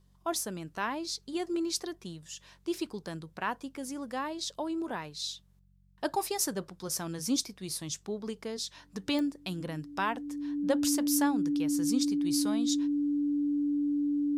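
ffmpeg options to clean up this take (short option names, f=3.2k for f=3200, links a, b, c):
-af "adeclick=t=4,bandreject=f=46.7:t=h:w=4,bandreject=f=93.4:t=h:w=4,bandreject=f=140.1:t=h:w=4,bandreject=f=186.8:t=h:w=4,bandreject=f=290:w=30"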